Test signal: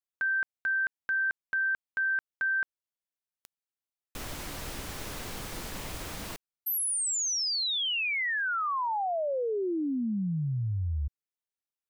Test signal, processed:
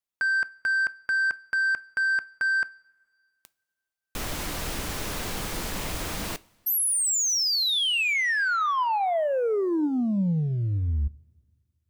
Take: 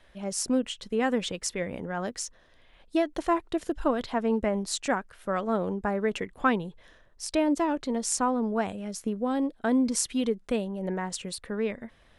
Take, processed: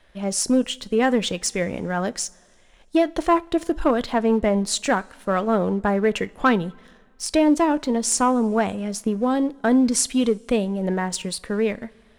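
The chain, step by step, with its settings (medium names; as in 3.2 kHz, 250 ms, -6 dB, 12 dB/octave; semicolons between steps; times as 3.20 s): waveshaping leveller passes 1; two-slope reverb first 0.29 s, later 2 s, from -18 dB, DRR 16.5 dB; trim +3.5 dB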